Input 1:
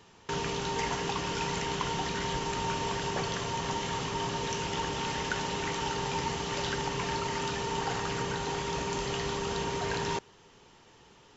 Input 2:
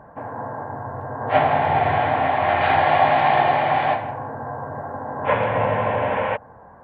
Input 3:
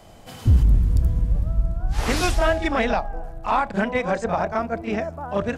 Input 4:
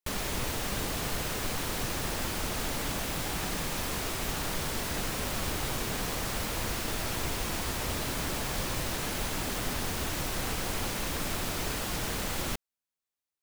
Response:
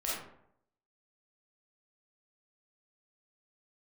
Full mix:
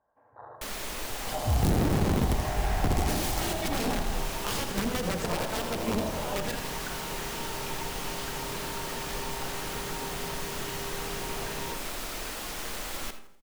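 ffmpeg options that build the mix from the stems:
-filter_complex "[0:a]adelay=1550,volume=-10dB,asplit=2[a][b];[b]volume=-4dB[c];[1:a]afwtdn=0.0794,equalizer=f=150:w=1:g=-12,volume=-15.5dB,asplit=3[d][e][f];[e]volume=-9dB[g];[f]volume=-3dB[h];[2:a]highshelf=f=2.5k:g=10,acrossover=split=640[i][j];[i]aeval=exprs='val(0)*(1-0.7/2+0.7/2*cos(2*PI*1*n/s))':c=same[k];[j]aeval=exprs='val(0)*(1-0.7/2-0.7/2*cos(2*PI*1*n/s))':c=same[l];[k][l]amix=inputs=2:normalize=0,aeval=exprs='(mod(8.41*val(0)+1,2)-1)/8.41':c=same,adelay=1000,volume=-1dB,asplit=2[m][n];[n]volume=-8.5dB[o];[3:a]equalizer=f=110:t=o:w=2.2:g=-12,adelay=550,volume=-3dB,asplit=3[p][q][r];[q]volume=-12.5dB[s];[r]volume=-16.5dB[t];[4:a]atrim=start_sample=2205[u];[c][g][s]amix=inputs=3:normalize=0[v];[v][u]afir=irnorm=-1:irlink=0[w];[h][o][t]amix=inputs=3:normalize=0,aecho=0:1:82|164|246|328|410|492|574:1|0.49|0.24|0.118|0.0576|0.0282|0.0138[x];[a][d][m][p][w][x]amix=inputs=6:normalize=0,acrossover=split=420[y][z];[z]acompressor=threshold=-33dB:ratio=3[aa];[y][aa]amix=inputs=2:normalize=0"

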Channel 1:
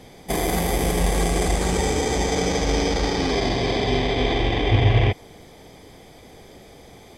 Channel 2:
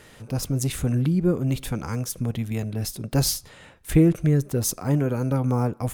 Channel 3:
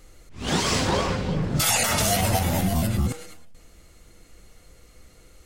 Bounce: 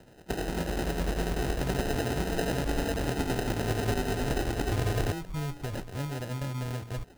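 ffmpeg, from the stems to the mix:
-filter_complex "[0:a]lowpass=f=5.2k:w=0.5412,lowpass=f=5.2k:w=1.3066,tremolo=f=10:d=0.53,volume=-6dB[a];[1:a]bandreject=f=58.88:t=h:w=4,bandreject=f=117.76:t=h:w=4,bandreject=f=176.64:t=h:w=4,bandreject=f=235.52:t=h:w=4,bandreject=f=294.4:t=h:w=4,adelay=1100,volume=-6.5dB,asubboost=boost=9:cutoff=65,acompressor=threshold=-32dB:ratio=3,volume=0dB[b];[a][b]amix=inputs=2:normalize=0,acrossover=split=200[c][d];[c]acompressor=threshold=-27dB:ratio=6[e];[e][d]amix=inputs=2:normalize=0,acrusher=samples=39:mix=1:aa=0.000001"

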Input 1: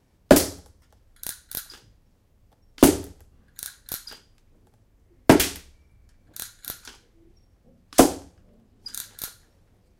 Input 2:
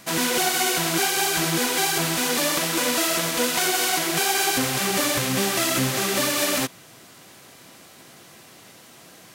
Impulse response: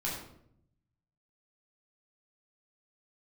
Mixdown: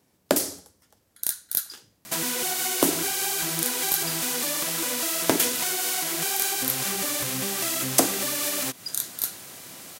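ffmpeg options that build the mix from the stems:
-filter_complex "[0:a]highpass=160,acompressor=threshold=-19dB:ratio=6,volume=-0.5dB[a];[1:a]acompressor=threshold=-31dB:ratio=4,adelay=2050,volume=1dB[b];[a][b]amix=inputs=2:normalize=0,highshelf=f=5.9k:g=10"

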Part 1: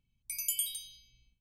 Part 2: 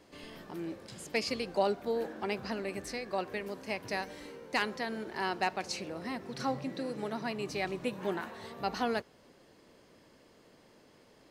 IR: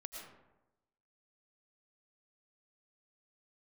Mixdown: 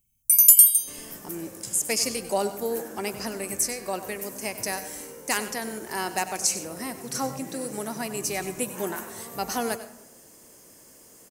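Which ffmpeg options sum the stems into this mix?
-filter_complex "[0:a]volume=-1dB,asplit=2[a][b];[b]volume=-14.5dB[c];[1:a]adelay=750,volume=1.5dB,asplit=3[d][e][f];[e]volume=-7.5dB[g];[f]volume=-12.5dB[h];[2:a]atrim=start_sample=2205[i];[c][g]amix=inputs=2:normalize=0[j];[j][i]afir=irnorm=-1:irlink=0[k];[h]aecho=0:1:96:1[l];[a][d][k][l]amix=inputs=4:normalize=0,aexciter=amount=7.9:drive=8:freq=6k,asoftclip=type=tanh:threshold=-2.5dB"

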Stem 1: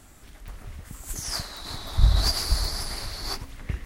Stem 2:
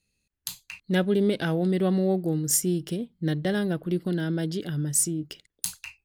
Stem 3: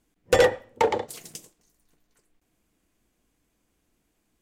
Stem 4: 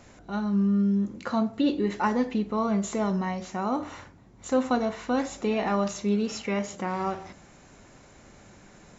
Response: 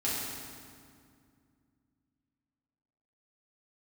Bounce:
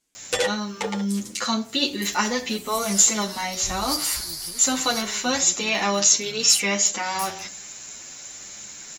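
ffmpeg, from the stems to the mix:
-filter_complex "[0:a]adelay=1650,volume=-12.5dB[a];[1:a]alimiter=limit=-20dB:level=0:latency=1:release=33,adelay=1550,volume=-14.5dB[b];[2:a]lowpass=7.3k,volume=-6.5dB[c];[3:a]highshelf=f=2.1k:g=9,adelay=150,volume=1dB[d];[a][b][c][d]amix=inputs=4:normalize=0,lowshelf=f=87:g=-6.5,crystalizer=i=7.5:c=0,asplit=2[e][f];[f]adelay=8.8,afreqshift=1.1[g];[e][g]amix=inputs=2:normalize=1"

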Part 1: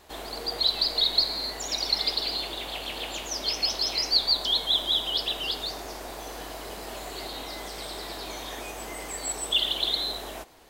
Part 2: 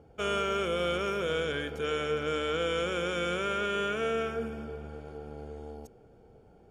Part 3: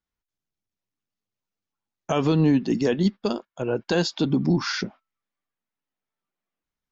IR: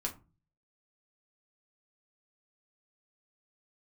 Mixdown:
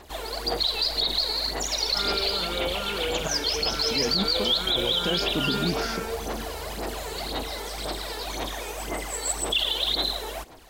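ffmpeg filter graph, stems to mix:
-filter_complex "[0:a]aphaser=in_gain=1:out_gain=1:delay=2.3:decay=0.62:speed=1.9:type=sinusoidal,volume=1.5dB[a];[1:a]asplit=2[b][c];[c]afreqshift=2.3[d];[b][d]amix=inputs=2:normalize=1,adelay=1750,volume=1.5dB[e];[2:a]adelay=1150,volume=-5.5dB,asplit=3[f][g][h];[f]atrim=end=3.28,asetpts=PTS-STARTPTS,afade=t=out:st=3.276:d=0.004:c=hsin[i];[g]atrim=start=3.28:end=3.91,asetpts=PTS-STARTPTS,volume=0[j];[h]atrim=start=3.91,asetpts=PTS-STARTPTS,afade=t=in:d=0.004:c=hsin[k];[i][j][k]concat=n=3:v=0:a=1[l];[a][e][l]amix=inputs=3:normalize=0,alimiter=limit=-15dB:level=0:latency=1:release=36"

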